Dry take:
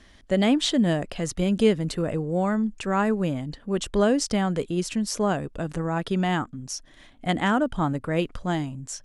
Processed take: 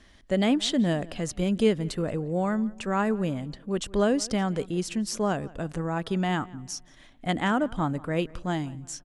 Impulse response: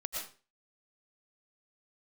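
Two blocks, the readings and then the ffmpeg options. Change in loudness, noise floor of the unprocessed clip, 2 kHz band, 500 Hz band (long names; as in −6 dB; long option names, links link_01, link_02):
−2.5 dB, −53 dBFS, −2.5 dB, −2.5 dB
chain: -filter_complex "[0:a]asplit=2[link_01][link_02];[link_02]adelay=175,lowpass=frequency=3100:poles=1,volume=-21.5dB,asplit=2[link_03][link_04];[link_04]adelay=175,lowpass=frequency=3100:poles=1,volume=0.41,asplit=2[link_05][link_06];[link_06]adelay=175,lowpass=frequency=3100:poles=1,volume=0.41[link_07];[link_01][link_03][link_05][link_07]amix=inputs=4:normalize=0,volume=-2.5dB"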